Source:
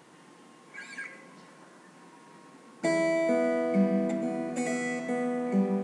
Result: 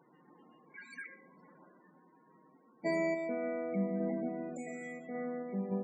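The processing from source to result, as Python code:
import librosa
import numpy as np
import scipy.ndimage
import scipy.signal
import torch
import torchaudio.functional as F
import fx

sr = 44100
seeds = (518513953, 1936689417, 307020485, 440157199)

y = fx.high_shelf(x, sr, hz=9800.0, db=2.5)
y = y + 10.0 ** (-17.0 / 20.0) * np.pad(y, (int(116 * sr / 1000.0), 0))[:len(y)]
y = fx.tremolo_random(y, sr, seeds[0], hz=3.5, depth_pct=55)
y = fx.spec_topn(y, sr, count=32)
y = y * librosa.db_to_amplitude(-5.5)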